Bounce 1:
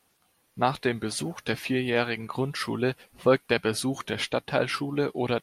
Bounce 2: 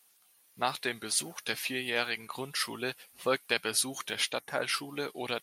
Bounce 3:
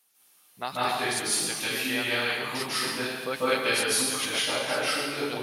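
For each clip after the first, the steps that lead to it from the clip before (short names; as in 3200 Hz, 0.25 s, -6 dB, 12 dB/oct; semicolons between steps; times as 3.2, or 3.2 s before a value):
spectral gain 4.4–4.63, 2300–5400 Hz -12 dB; tilt +3.5 dB/oct; gain -5.5 dB
reverb RT60 1.4 s, pre-delay 0.134 s, DRR -9 dB; gain -3.5 dB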